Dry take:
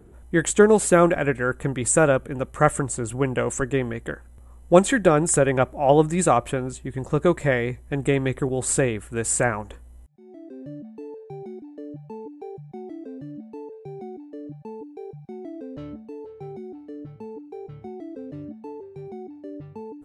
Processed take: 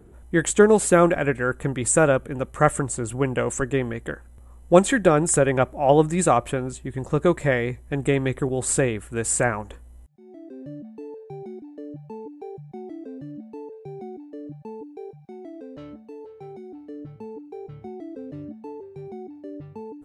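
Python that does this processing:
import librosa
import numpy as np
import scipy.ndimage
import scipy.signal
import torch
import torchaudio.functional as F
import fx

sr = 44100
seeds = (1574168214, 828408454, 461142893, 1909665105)

y = fx.low_shelf(x, sr, hz=260.0, db=-8.0, at=(15.09, 16.73))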